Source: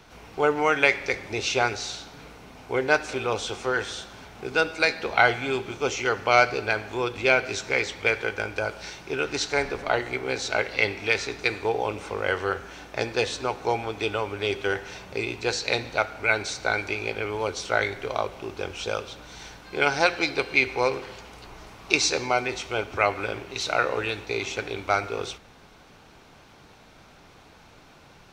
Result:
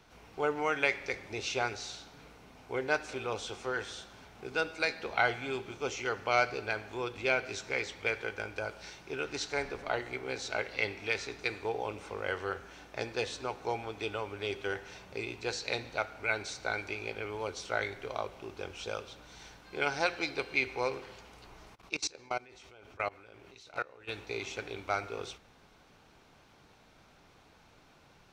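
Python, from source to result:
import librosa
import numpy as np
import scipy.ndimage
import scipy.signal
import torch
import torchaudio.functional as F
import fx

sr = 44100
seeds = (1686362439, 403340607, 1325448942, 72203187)

y = fx.level_steps(x, sr, step_db=23, at=(21.74, 24.07), fade=0.02)
y = y * librosa.db_to_amplitude(-9.0)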